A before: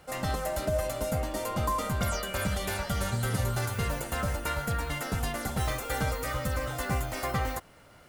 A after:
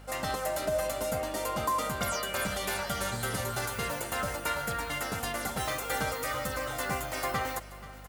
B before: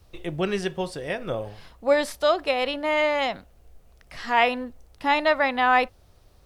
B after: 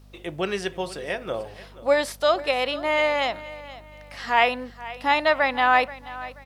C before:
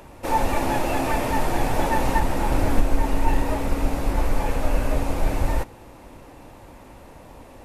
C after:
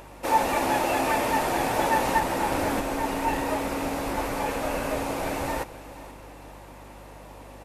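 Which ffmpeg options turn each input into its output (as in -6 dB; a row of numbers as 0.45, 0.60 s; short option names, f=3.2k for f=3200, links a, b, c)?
-filter_complex "[0:a]highpass=f=360:p=1,aeval=exprs='val(0)+0.00316*(sin(2*PI*50*n/s)+sin(2*PI*2*50*n/s)/2+sin(2*PI*3*50*n/s)/3+sin(2*PI*4*50*n/s)/4+sin(2*PI*5*50*n/s)/5)':c=same,asplit=2[a][b];[b]aecho=0:1:481|962|1443:0.141|0.0494|0.0173[c];[a][c]amix=inputs=2:normalize=0,volume=1.5dB"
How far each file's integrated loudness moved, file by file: -1.0, +0.5, -1.5 LU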